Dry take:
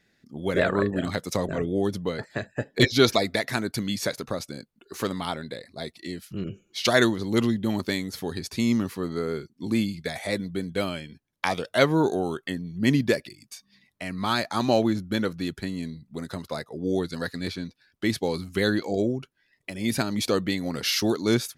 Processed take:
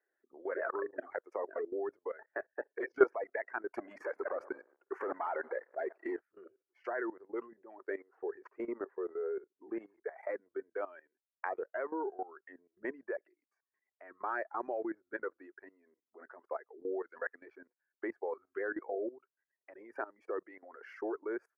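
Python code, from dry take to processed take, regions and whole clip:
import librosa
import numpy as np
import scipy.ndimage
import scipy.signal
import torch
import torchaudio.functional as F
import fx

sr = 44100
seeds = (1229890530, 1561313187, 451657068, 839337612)

y = fx.chain(x, sr, fx.reverse_delay_fb(ms=113, feedback_pct=41, wet_db=-13),
    fx.leveller(passes=3), at=(3.72, 6.22))
y = fx.chain(y, sr, fx.peak_eq(hz=420.0, db=8.5, octaves=0.58),
    fx.resample_linear(factor=4), at=(7.9, 10.18))
y = fx.dereverb_blind(y, sr, rt60_s=1.8)
y = scipy.signal.sosfilt(scipy.signal.ellip(3, 1.0, 40, [370.0, 1700.0], 'bandpass', fs=sr, output='sos'), y)
y = fx.level_steps(y, sr, step_db=17)
y = F.gain(torch.from_numpy(y), -1.5).numpy()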